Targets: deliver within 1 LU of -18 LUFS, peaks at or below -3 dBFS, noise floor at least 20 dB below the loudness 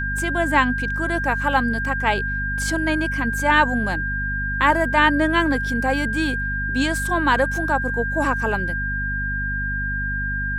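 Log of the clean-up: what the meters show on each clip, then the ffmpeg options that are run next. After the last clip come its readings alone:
hum 50 Hz; harmonics up to 250 Hz; hum level -25 dBFS; steady tone 1600 Hz; tone level -24 dBFS; loudness -21.0 LUFS; peak -3.0 dBFS; loudness target -18.0 LUFS
-> -af "bandreject=f=50:t=h:w=4,bandreject=f=100:t=h:w=4,bandreject=f=150:t=h:w=4,bandreject=f=200:t=h:w=4,bandreject=f=250:t=h:w=4"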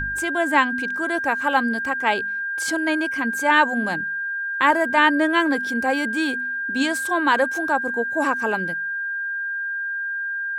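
hum none; steady tone 1600 Hz; tone level -24 dBFS
-> -af "bandreject=f=1.6k:w=30"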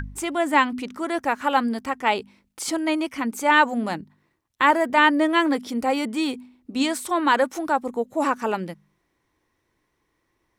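steady tone none; loudness -22.5 LUFS; peak -5.0 dBFS; loudness target -18.0 LUFS
-> -af "volume=4.5dB,alimiter=limit=-3dB:level=0:latency=1"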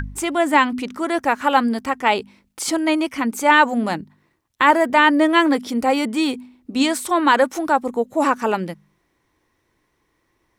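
loudness -18.5 LUFS; peak -3.0 dBFS; noise floor -69 dBFS

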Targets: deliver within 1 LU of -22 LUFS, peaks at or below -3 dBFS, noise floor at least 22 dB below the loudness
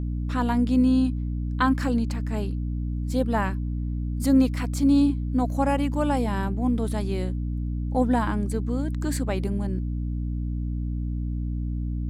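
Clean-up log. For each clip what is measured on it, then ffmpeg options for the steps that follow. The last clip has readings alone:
hum 60 Hz; harmonics up to 300 Hz; hum level -25 dBFS; loudness -25.5 LUFS; peak -10.0 dBFS; loudness target -22.0 LUFS
-> -af "bandreject=f=60:t=h:w=6,bandreject=f=120:t=h:w=6,bandreject=f=180:t=h:w=6,bandreject=f=240:t=h:w=6,bandreject=f=300:t=h:w=6"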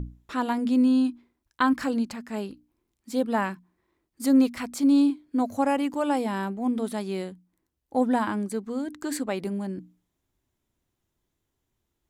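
hum none; loudness -26.0 LUFS; peak -10.5 dBFS; loudness target -22.0 LUFS
-> -af "volume=4dB"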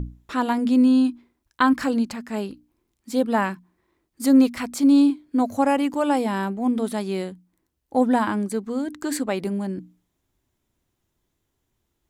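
loudness -22.0 LUFS; peak -6.5 dBFS; noise floor -76 dBFS

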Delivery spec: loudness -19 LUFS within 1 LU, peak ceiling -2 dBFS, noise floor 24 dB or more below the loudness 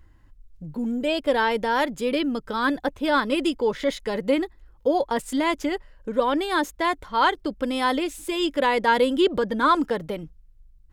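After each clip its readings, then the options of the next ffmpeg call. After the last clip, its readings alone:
loudness -24.0 LUFS; peak -7.5 dBFS; loudness target -19.0 LUFS
-> -af "volume=5dB"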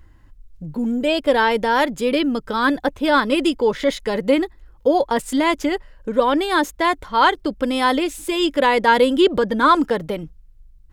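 loudness -19.0 LUFS; peak -2.5 dBFS; noise floor -49 dBFS

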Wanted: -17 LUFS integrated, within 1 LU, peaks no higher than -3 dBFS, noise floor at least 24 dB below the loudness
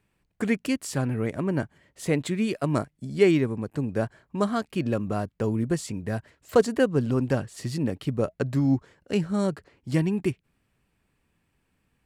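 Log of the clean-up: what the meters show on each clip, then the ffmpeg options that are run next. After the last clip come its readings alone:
loudness -27.0 LUFS; peak -9.0 dBFS; loudness target -17.0 LUFS
-> -af "volume=10dB,alimiter=limit=-3dB:level=0:latency=1"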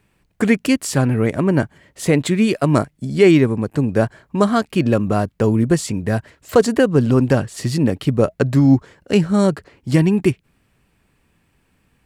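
loudness -17.5 LUFS; peak -3.0 dBFS; noise floor -64 dBFS

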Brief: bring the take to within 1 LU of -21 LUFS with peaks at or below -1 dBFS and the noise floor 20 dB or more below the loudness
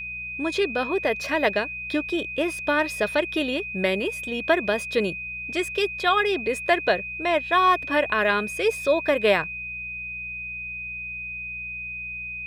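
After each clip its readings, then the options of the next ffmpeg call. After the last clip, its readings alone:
hum 60 Hz; harmonics up to 180 Hz; hum level -46 dBFS; steady tone 2500 Hz; tone level -31 dBFS; loudness -24.5 LUFS; peak -7.0 dBFS; loudness target -21.0 LUFS
-> -af "bandreject=f=60:t=h:w=4,bandreject=f=120:t=h:w=4,bandreject=f=180:t=h:w=4"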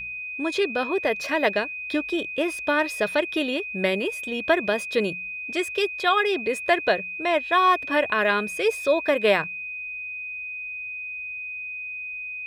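hum none; steady tone 2500 Hz; tone level -31 dBFS
-> -af "bandreject=f=2.5k:w=30"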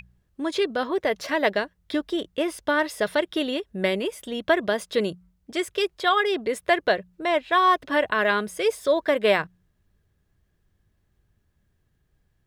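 steady tone none; loudness -24.5 LUFS; peak -7.5 dBFS; loudness target -21.0 LUFS
-> -af "volume=3.5dB"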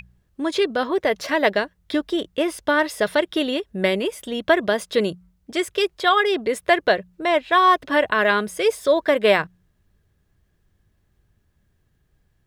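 loudness -21.0 LUFS; peak -4.0 dBFS; noise floor -67 dBFS

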